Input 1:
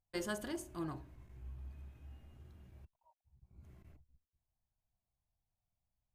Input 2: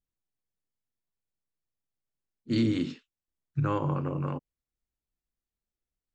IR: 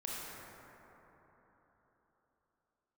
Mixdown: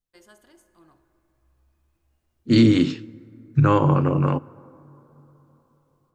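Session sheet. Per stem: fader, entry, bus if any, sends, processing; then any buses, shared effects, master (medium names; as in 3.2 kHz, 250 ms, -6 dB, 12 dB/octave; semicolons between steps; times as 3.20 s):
-12.5 dB, 0.00 s, send -11.5 dB, peaking EQ 130 Hz -8.5 dB 2.6 oct
0.0 dB, 0.00 s, send -23.5 dB, level rider gain up to 11 dB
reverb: on, RT60 4.0 s, pre-delay 23 ms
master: none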